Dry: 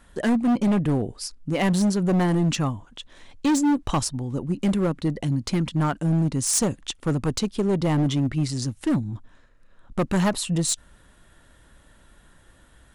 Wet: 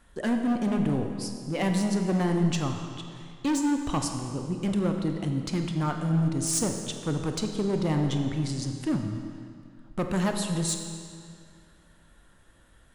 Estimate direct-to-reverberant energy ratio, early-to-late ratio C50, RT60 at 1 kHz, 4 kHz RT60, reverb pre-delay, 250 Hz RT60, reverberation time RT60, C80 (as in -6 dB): 4.0 dB, 5.0 dB, 2.2 s, 1.9 s, 25 ms, 2.2 s, 2.2 s, 6.0 dB